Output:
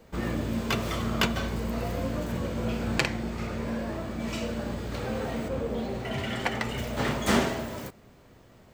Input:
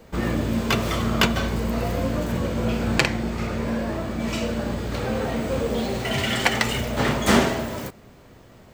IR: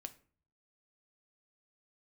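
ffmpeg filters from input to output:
-filter_complex "[0:a]asettb=1/sr,asplit=3[link_01][link_02][link_03];[link_01]atrim=end=5.484[link_04];[link_02]atrim=start=5.48:end=6.78,asetpts=PTS-STARTPTS,afade=type=in:duration=0.004:curve=qsin,afade=type=out:start_time=1.296:duration=0.004:curve=qsin,highshelf=frequency=2600:gain=-9.5[link_05];[link_03]atrim=start=6.776[link_06];[link_04][link_05]acrossfade=duration=0.004:curve1=hsin:curve2=qsin[link_07];[link_07][link_06]acrossfade=duration=0.004:curve1=qsin:curve2=hsin,volume=-6dB"

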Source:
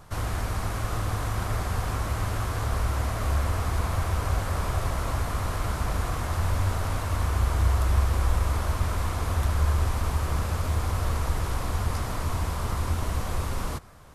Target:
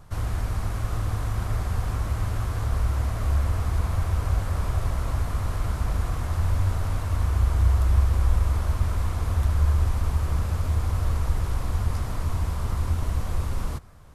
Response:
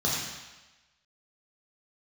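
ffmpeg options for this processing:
-af "lowshelf=frequency=180:gain=8.5,volume=-4.5dB"

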